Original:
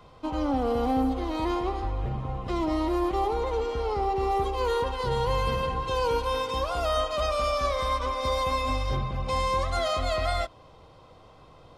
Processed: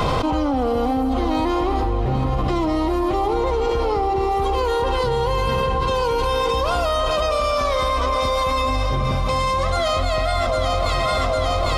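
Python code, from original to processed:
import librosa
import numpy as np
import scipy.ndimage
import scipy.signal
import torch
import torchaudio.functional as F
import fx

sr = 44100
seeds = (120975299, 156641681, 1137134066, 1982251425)

y = fx.echo_alternate(x, sr, ms=401, hz=890.0, feedback_pct=76, wet_db=-10)
y = fx.env_flatten(y, sr, amount_pct=100)
y = y * librosa.db_to_amplitude(3.0)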